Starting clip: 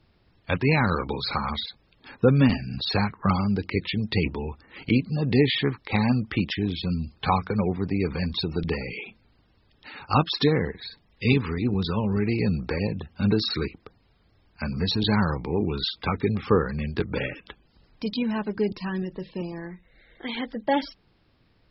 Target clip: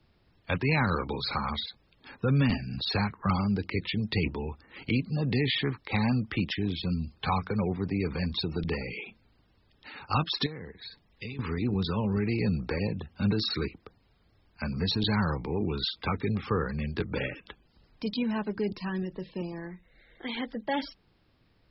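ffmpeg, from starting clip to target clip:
-filter_complex "[0:a]acrossover=split=150|1100[s0][s1][s2];[s1]alimiter=limit=0.1:level=0:latency=1:release=14[s3];[s0][s3][s2]amix=inputs=3:normalize=0,asettb=1/sr,asplit=3[s4][s5][s6];[s4]atrim=end=10.464[s7];[s5]atrim=start=10.46:end=11.39,asetpts=PTS-STARTPTS,afade=t=in:d=0.004:c=qsin,afade=t=out:st=0.926:d=0.004:c=qsin,acompressor=threshold=0.0178:ratio=6[s8];[s6]atrim=start=11.386[s9];[s7][s8]acrossfade=d=0.004:c1=hsin:c2=qsin[s10];[s10][s9]acrossfade=d=0.004:c1=qsin:c2=hsin,volume=0.708"

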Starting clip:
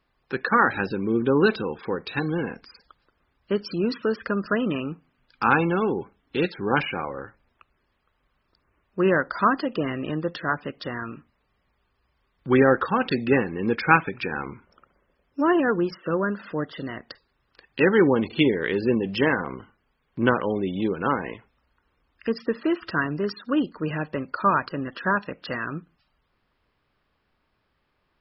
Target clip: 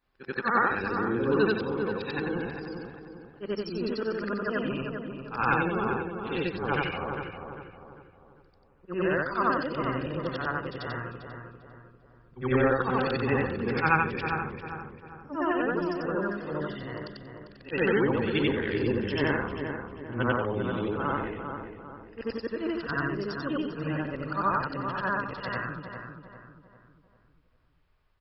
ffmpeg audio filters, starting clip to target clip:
-filter_complex "[0:a]afftfilt=real='re':imag='-im':win_size=8192:overlap=0.75,asubboost=boost=5:cutoff=88,asplit=2[s0][s1];[s1]adelay=398,lowpass=f=1800:p=1,volume=0.473,asplit=2[s2][s3];[s3]adelay=398,lowpass=f=1800:p=1,volume=0.44,asplit=2[s4][s5];[s5]adelay=398,lowpass=f=1800:p=1,volume=0.44,asplit=2[s6][s7];[s7]adelay=398,lowpass=f=1800:p=1,volume=0.44,asplit=2[s8][s9];[s9]adelay=398,lowpass=f=1800:p=1,volume=0.44[s10];[s0][s2][s4][s6][s8][s10]amix=inputs=6:normalize=0"

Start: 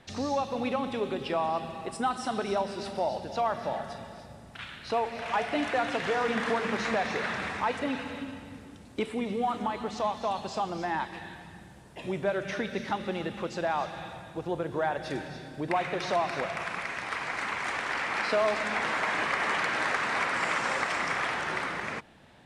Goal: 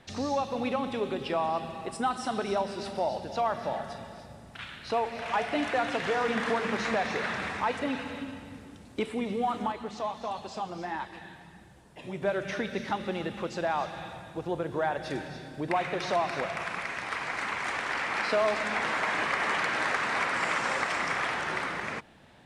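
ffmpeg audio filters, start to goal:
-filter_complex "[0:a]asettb=1/sr,asplit=3[s0][s1][s2];[s0]atrim=end=9.724[s3];[s1]atrim=start=9.72:end=12.22,asetpts=PTS-STARTPTS,afade=t=in:d=0.004:c=qsin,afade=t=out:st=2.496:d=0.004:c=qsin,flanger=delay=1.4:depth=6.4:regen=-46:speed=1.5:shape=triangular[s4];[s2]atrim=start=12.216[s5];[s3][s4]acrossfade=d=0.004:c1=hsin:c2=qsin[s6];[s6][s5]acrossfade=d=0.004:c1=qsin:c2=hsin"

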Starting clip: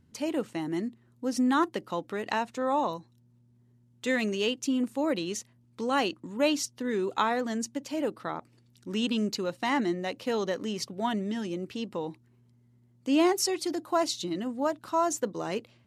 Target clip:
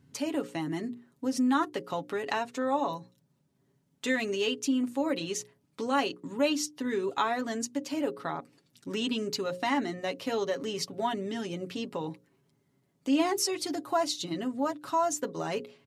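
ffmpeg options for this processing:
-filter_complex "[0:a]highpass=78,bandreject=f=60:t=h:w=6,bandreject=f=120:t=h:w=6,bandreject=f=180:t=h:w=6,bandreject=f=240:t=h:w=6,bandreject=f=300:t=h:w=6,bandreject=f=360:t=h:w=6,bandreject=f=420:t=h:w=6,bandreject=f=480:t=h:w=6,bandreject=f=540:t=h:w=6,aecho=1:1:7.2:0.61,asplit=2[s0][s1];[s1]acompressor=threshold=0.02:ratio=6,volume=1.41[s2];[s0][s2]amix=inputs=2:normalize=0,volume=0.531"

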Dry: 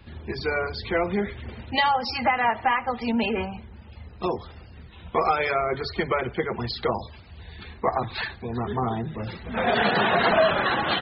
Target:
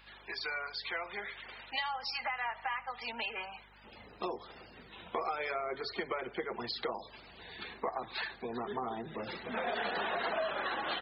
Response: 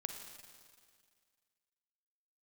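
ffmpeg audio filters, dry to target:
-af "asetnsamples=n=441:p=0,asendcmd='3.84 highpass f 310',highpass=1000,acompressor=threshold=0.0141:ratio=3,aeval=exprs='val(0)+0.000631*(sin(2*PI*50*n/s)+sin(2*PI*2*50*n/s)/2+sin(2*PI*3*50*n/s)/3+sin(2*PI*4*50*n/s)/4+sin(2*PI*5*50*n/s)/5)':c=same"

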